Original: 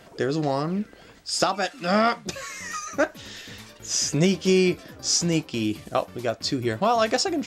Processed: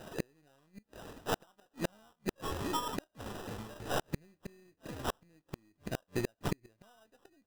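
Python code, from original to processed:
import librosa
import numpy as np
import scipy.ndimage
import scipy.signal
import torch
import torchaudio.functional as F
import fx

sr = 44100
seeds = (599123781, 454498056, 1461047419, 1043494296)

y = np.where(x < 0.0, 10.0 ** (-3.0 / 20.0) * x, x)
y = fx.high_shelf(y, sr, hz=3300.0, db=fx.steps((0.0, -4.5), (2.7, -10.5)))
y = fx.sample_hold(y, sr, seeds[0], rate_hz=2200.0, jitter_pct=0)
y = fx.gate_flip(y, sr, shuts_db=-22.0, range_db=-42)
y = y * 10.0 ** (2.0 / 20.0)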